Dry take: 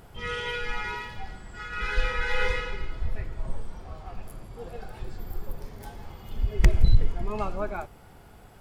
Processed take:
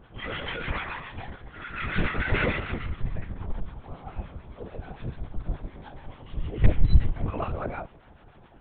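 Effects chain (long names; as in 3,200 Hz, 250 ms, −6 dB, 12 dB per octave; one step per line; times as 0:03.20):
two-band tremolo in antiphase 6.9 Hz, depth 70%, crossover 910 Hz
linear-prediction vocoder at 8 kHz whisper
level +1.5 dB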